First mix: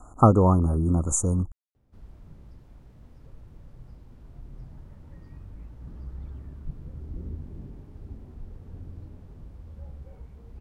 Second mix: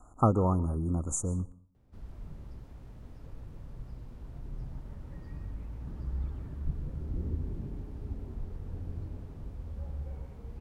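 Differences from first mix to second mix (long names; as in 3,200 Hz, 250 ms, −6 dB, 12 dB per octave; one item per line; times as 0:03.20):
speech −8.0 dB
reverb: on, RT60 0.50 s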